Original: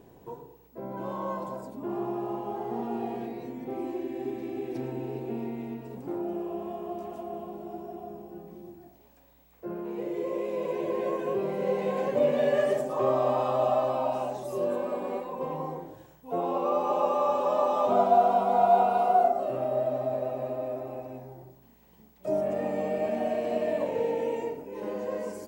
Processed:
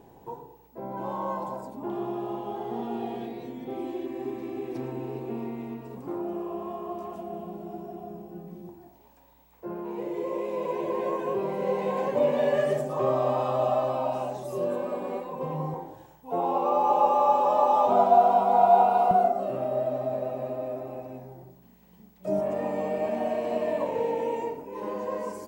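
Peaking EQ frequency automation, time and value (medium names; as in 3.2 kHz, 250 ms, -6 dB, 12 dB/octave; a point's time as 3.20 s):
peaking EQ +10.5 dB 0.28 oct
850 Hz
from 1.90 s 3.4 kHz
from 4.06 s 1.1 kHz
from 7.16 s 180 Hz
from 8.69 s 930 Hz
from 12.56 s 150 Hz
from 15.74 s 860 Hz
from 19.11 s 190 Hz
from 22.39 s 1 kHz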